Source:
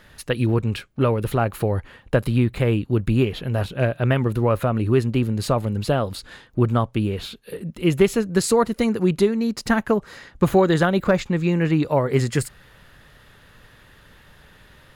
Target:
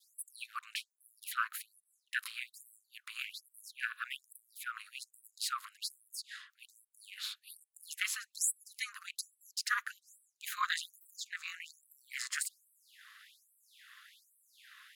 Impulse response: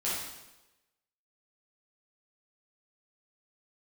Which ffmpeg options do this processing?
-af "adynamicequalizer=threshold=0.00631:dfrequency=2700:dqfactor=1.2:tfrequency=2700:tqfactor=1.2:attack=5:release=100:ratio=0.375:range=3:mode=cutabove:tftype=bell,aeval=exprs='val(0)*sin(2*PI*110*n/s)':c=same,afftfilt=real='re*gte(b*sr/1024,990*pow(7800/990,0.5+0.5*sin(2*PI*1.2*pts/sr)))':imag='im*gte(b*sr/1024,990*pow(7800/990,0.5+0.5*sin(2*PI*1.2*pts/sr)))':win_size=1024:overlap=0.75"

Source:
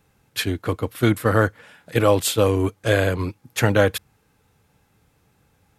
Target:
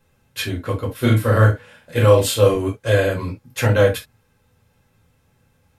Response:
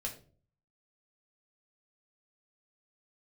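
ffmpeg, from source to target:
-filter_complex "[0:a]asettb=1/sr,asplit=3[s0][s1][s2];[s0]atrim=end=0.894[s3];[s1]atrim=start=0.89:end=2.54,asetpts=PTS-STARTPTS,afade=t=in:d=0.004:c=qsin,afade=t=out:st=1.646:d=0.004:c=qsin,asplit=2[s4][s5];[s5]adelay=37,volume=0.596[s6];[s4][s6]amix=inputs=2:normalize=0,atrim=end_sample=72765[s7];[s2]atrim=start=2.536[s8];[s3][s7]acrossfade=d=0.004:c1=hsin:c2=qsin[s9];[s9][s8]acrossfade=d=0.004:c1=qsin:c2=hsin[s10];[1:a]atrim=start_sample=2205,atrim=end_sample=3528[s11];[s10][s11]afir=irnorm=-1:irlink=0"

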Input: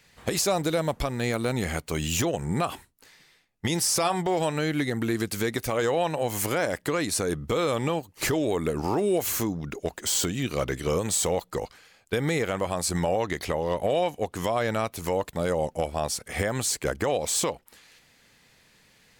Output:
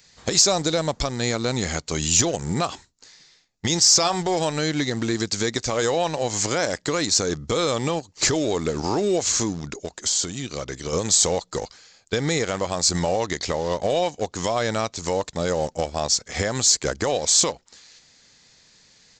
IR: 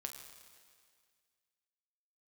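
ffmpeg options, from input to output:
-filter_complex "[0:a]asplit=2[s0][s1];[s1]aeval=exprs='val(0)*gte(abs(val(0)),0.0355)':c=same,volume=0.316[s2];[s0][s2]amix=inputs=2:normalize=0,asplit=3[s3][s4][s5];[s3]afade=t=out:st=9.76:d=0.02[s6];[s4]acompressor=threshold=0.0316:ratio=2.5,afade=t=in:st=9.76:d=0.02,afade=t=out:st=10.92:d=0.02[s7];[s5]afade=t=in:st=10.92:d=0.02[s8];[s6][s7][s8]amix=inputs=3:normalize=0,aresample=16000,aresample=44100,aeval=exprs='0.316*(cos(1*acos(clip(val(0)/0.316,-1,1)))-cos(1*PI/2))+0.00447*(cos(2*acos(clip(val(0)/0.316,-1,1)))-cos(2*PI/2))':c=same,aexciter=amount=4.3:drive=2.9:freq=3900"

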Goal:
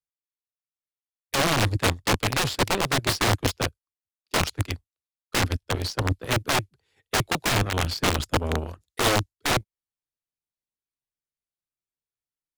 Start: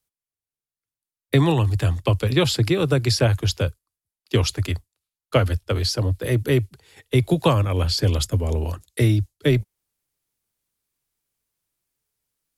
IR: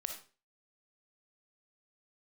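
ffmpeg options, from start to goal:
-af "aeval=exprs='(mod(5.01*val(0)+1,2)-1)/5.01':c=same,aeval=exprs='0.211*(cos(1*acos(clip(val(0)/0.211,-1,1)))-cos(1*PI/2))+0.0596*(cos(3*acos(clip(val(0)/0.211,-1,1)))-cos(3*PI/2))':c=same,highshelf=f=9600:g=-11"

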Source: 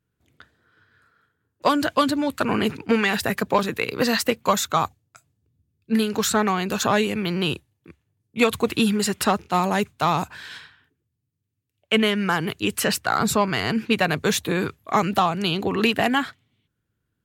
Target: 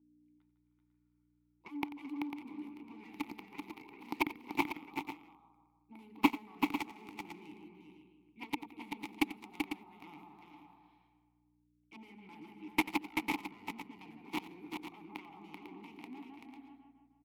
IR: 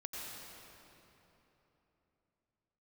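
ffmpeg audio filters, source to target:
-filter_complex "[0:a]asettb=1/sr,asplit=3[s0][s1][s2];[s0]atrim=end=6.594[s3];[s1]atrim=start=6.59:end=7.18,asetpts=PTS-STARTPTS,afade=t=in:d=0.004:c=qsin,afade=t=out:st=0.586:d=0.004:c=qsin,aeval=exprs='val(0)+0.5*0.0251*sgn(val(0))':c=same[s4];[s2]atrim=start=7.176[s5];[s3][s4]acrossfade=d=0.004:c1=hsin:c2=qsin[s6];[s6][s5]acrossfade=d=0.004:c1=qsin:c2=hsin,aexciter=amount=14.9:drive=6.5:freq=11000,asplit=2[s7][s8];[s8]adelay=155,lowpass=f=3100:p=1,volume=0.355,asplit=2[s9][s10];[s10]adelay=155,lowpass=f=3100:p=1,volume=0.53,asplit=2[s11][s12];[s12]adelay=155,lowpass=f=3100:p=1,volume=0.53,asplit=2[s13][s14];[s14]adelay=155,lowpass=f=3100:p=1,volume=0.53,asplit=2[s15][s16];[s16]adelay=155,lowpass=f=3100:p=1,volume=0.53,asplit=2[s17][s18];[s18]adelay=155,lowpass=f=3100:p=1,volume=0.53[s19];[s9][s11][s13][s15][s17][s19]amix=inputs=6:normalize=0[s20];[s7][s20]amix=inputs=2:normalize=0,aeval=exprs='val(0)+0.0126*(sin(2*PI*60*n/s)+sin(2*PI*2*60*n/s)/2+sin(2*PI*3*60*n/s)/3+sin(2*PI*4*60*n/s)/4+sin(2*PI*5*60*n/s)/5)':c=same,aeval=exprs='clip(val(0),-1,0.2)':c=same,aeval=exprs='1*(cos(1*acos(clip(val(0)/1,-1,1)))-cos(1*PI/2))+0.355*(cos(3*acos(clip(val(0)/1,-1,1)))-cos(3*PI/2))':c=same,asplit=3[s21][s22][s23];[s21]bandpass=f=300:t=q:w=8,volume=1[s24];[s22]bandpass=f=870:t=q:w=8,volume=0.501[s25];[s23]bandpass=f=2240:t=q:w=8,volume=0.355[s26];[s24][s25][s26]amix=inputs=3:normalize=0,asplit=2[s27][s28];[s28]aecho=0:1:90|385|498:0.158|0.562|0.316[s29];[s27][s29]amix=inputs=2:normalize=0,volume=2.99"

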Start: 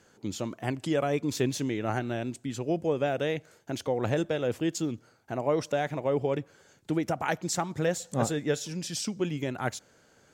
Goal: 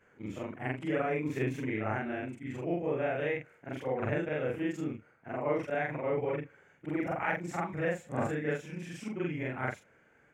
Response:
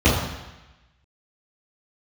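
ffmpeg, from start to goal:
-af "afftfilt=real='re':imag='-im':win_size=4096:overlap=0.75,highshelf=f=3100:t=q:w=3:g=-12"

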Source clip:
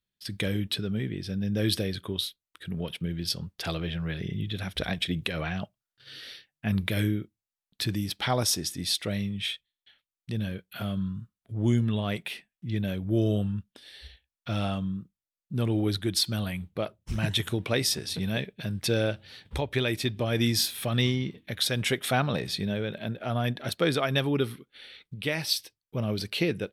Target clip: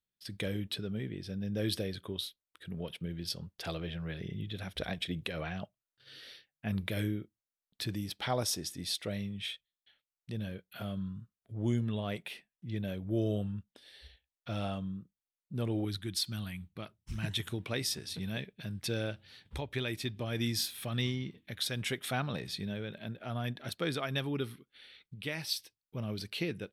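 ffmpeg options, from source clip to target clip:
-af "asetnsamples=n=441:p=0,asendcmd='15.85 equalizer g -11;17.24 equalizer g -3',equalizer=f=550:t=o:w=1.1:g=3.5,volume=0.422"

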